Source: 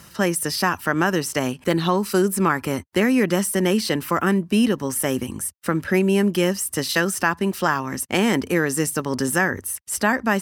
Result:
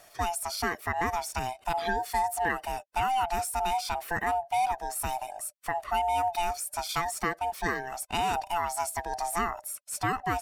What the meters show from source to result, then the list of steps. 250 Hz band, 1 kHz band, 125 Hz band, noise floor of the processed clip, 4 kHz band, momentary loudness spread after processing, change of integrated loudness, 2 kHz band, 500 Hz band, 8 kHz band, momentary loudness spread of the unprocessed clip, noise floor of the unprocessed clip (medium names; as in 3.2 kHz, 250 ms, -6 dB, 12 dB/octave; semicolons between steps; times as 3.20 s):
-21.0 dB, -0.5 dB, -15.5 dB, -57 dBFS, -9.5 dB, 6 LU, -9.0 dB, -10.0 dB, -12.0 dB, -9.0 dB, 5 LU, -48 dBFS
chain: split-band scrambler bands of 500 Hz; trim -9 dB